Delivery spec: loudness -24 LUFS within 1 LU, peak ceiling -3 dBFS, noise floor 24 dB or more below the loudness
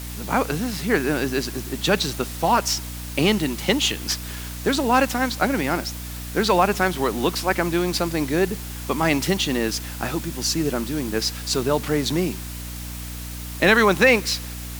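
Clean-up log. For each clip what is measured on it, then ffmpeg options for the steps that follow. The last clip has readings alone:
hum 60 Hz; highest harmonic 300 Hz; hum level -32 dBFS; noise floor -33 dBFS; noise floor target -46 dBFS; loudness -22.0 LUFS; peak level -3.5 dBFS; loudness target -24.0 LUFS
-> -af "bandreject=f=60:t=h:w=6,bandreject=f=120:t=h:w=6,bandreject=f=180:t=h:w=6,bandreject=f=240:t=h:w=6,bandreject=f=300:t=h:w=6"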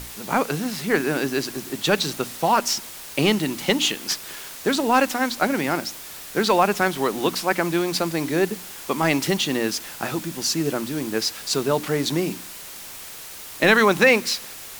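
hum not found; noise floor -38 dBFS; noise floor target -46 dBFS
-> -af "afftdn=nr=8:nf=-38"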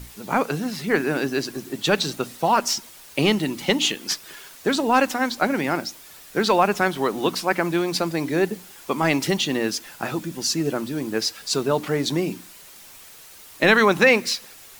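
noise floor -45 dBFS; noise floor target -47 dBFS
-> -af "afftdn=nr=6:nf=-45"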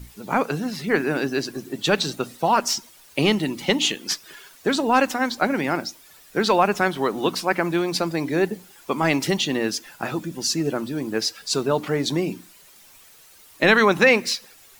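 noise floor -50 dBFS; loudness -22.5 LUFS; peak level -3.0 dBFS; loudness target -24.0 LUFS
-> -af "volume=0.841"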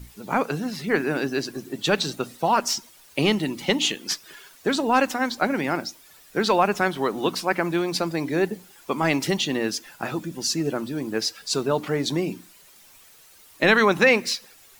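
loudness -24.0 LUFS; peak level -4.5 dBFS; noise floor -52 dBFS

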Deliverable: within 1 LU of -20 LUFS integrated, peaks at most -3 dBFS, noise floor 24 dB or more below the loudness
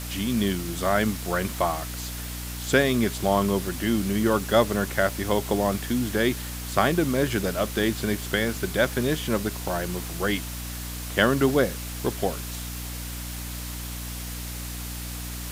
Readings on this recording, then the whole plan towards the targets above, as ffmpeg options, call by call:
hum 60 Hz; highest harmonic 300 Hz; hum level -33 dBFS; noise floor -34 dBFS; noise floor target -50 dBFS; loudness -26.0 LUFS; peak level -5.0 dBFS; loudness target -20.0 LUFS
-> -af "bandreject=f=60:t=h:w=4,bandreject=f=120:t=h:w=4,bandreject=f=180:t=h:w=4,bandreject=f=240:t=h:w=4,bandreject=f=300:t=h:w=4"
-af "afftdn=nr=16:nf=-34"
-af "volume=2,alimiter=limit=0.708:level=0:latency=1"

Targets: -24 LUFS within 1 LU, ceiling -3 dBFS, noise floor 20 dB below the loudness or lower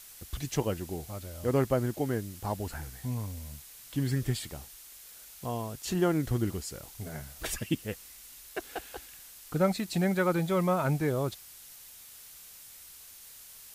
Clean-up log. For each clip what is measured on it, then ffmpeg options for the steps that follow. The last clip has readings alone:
noise floor -51 dBFS; noise floor target -52 dBFS; loudness -32.0 LUFS; peak level -14.0 dBFS; loudness target -24.0 LUFS
-> -af "afftdn=nr=6:nf=-51"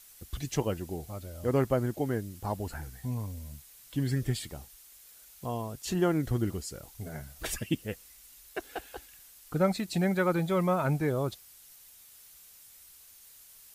noise floor -55 dBFS; loudness -32.0 LUFS; peak level -14.0 dBFS; loudness target -24.0 LUFS
-> -af "volume=2.51"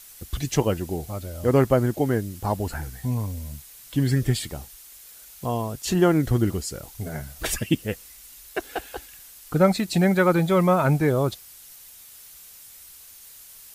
loudness -24.0 LUFS; peak level -6.0 dBFS; noise floor -47 dBFS

